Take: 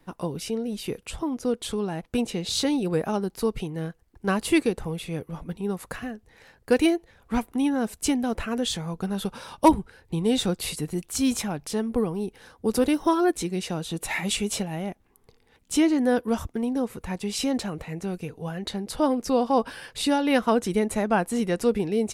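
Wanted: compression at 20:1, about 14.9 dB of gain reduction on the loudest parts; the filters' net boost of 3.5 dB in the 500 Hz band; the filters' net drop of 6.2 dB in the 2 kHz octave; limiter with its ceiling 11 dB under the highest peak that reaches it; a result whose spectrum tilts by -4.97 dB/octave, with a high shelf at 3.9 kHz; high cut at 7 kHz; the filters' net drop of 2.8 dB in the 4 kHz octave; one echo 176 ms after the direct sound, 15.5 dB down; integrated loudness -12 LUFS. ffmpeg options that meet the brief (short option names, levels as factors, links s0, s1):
-af "lowpass=7000,equalizer=f=500:t=o:g=4.5,equalizer=f=2000:t=o:g=-9,highshelf=f=3900:g=4.5,equalizer=f=4000:t=o:g=-3,acompressor=threshold=0.0562:ratio=20,alimiter=level_in=1.06:limit=0.0631:level=0:latency=1,volume=0.944,aecho=1:1:176:0.168,volume=12.6"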